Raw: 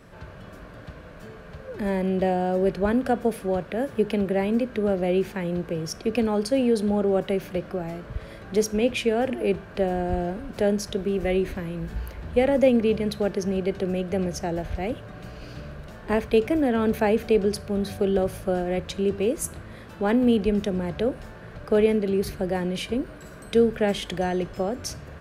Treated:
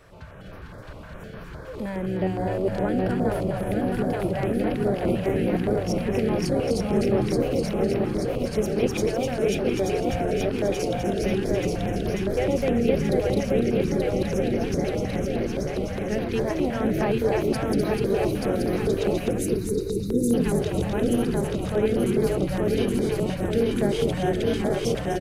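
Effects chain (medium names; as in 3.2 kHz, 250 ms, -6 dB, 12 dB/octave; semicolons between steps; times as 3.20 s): backward echo that repeats 441 ms, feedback 84%, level -2 dB; in parallel at -1 dB: compression, threshold -31 dBFS, peak gain reduction 17.5 dB; on the sum: spectral selection erased 19.31–20.34 s, 520–3600 Hz; frequency-shifting echo 252 ms, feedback 44%, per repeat -79 Hz, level -5 dB; step-sequenced notch 9.7 Hz 220–7600 Hz; trim -6 dB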